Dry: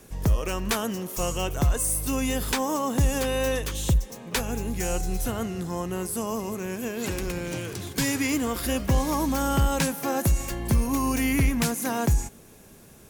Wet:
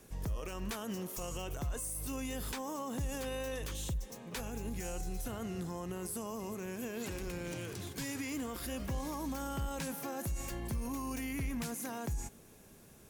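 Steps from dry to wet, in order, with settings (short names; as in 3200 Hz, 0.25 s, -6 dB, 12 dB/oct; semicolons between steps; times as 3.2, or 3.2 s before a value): limiter -23 dBFS, peak gain reduction 8.5 dB; gain -7.5 dB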